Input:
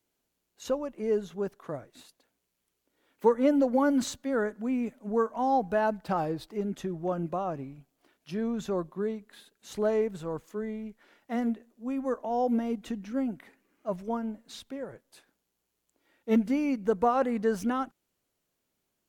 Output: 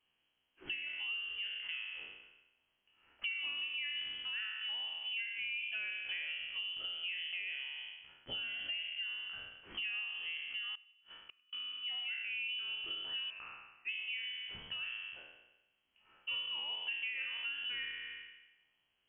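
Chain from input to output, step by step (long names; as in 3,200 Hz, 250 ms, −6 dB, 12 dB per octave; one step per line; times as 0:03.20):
peak hold with a decay on every bin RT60 1.03 s
0:08.43–0:09.03: comb filter 2.4 ms, depth 79%
0:13.30–0:13.89: Butterworth high-pass 420 Hz
downward compressor 6 to 1, threshold −39 dBFS, peak gain reduction 21 dB
0:10.75–0:11.53: gate with flip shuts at −39 dBFS, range −35 dB
tape delay 97 ms, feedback 65%, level −21 dB, low-pass 1,500 Hz
voice inversion scrambler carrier 3,200 Hz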